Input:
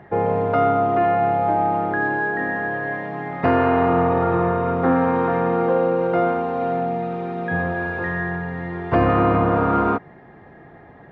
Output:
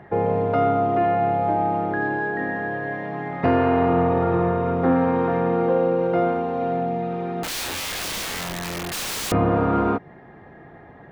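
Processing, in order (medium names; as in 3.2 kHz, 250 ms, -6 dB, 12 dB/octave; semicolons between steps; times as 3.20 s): 7.43–9.32 s: integer overflow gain 23.5 dB; dynamic bell 1.3 kHz, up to -5 dB, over -32 dBFS, Q 0.93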